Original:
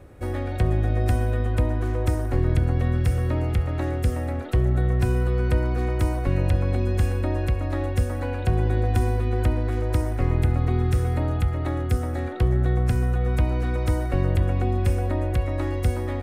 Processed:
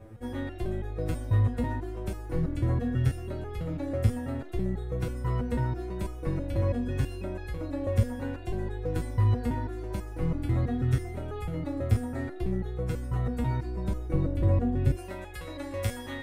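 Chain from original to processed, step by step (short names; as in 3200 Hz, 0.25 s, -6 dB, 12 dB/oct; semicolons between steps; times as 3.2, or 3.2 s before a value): tilt shelf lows +3 dB, about 790 Hz, from 13.65 s lows +7 dB, from 14.95 s lows -4 dB; stepped resonator 6.1 Hz 110–420 Hz; gain +8 dB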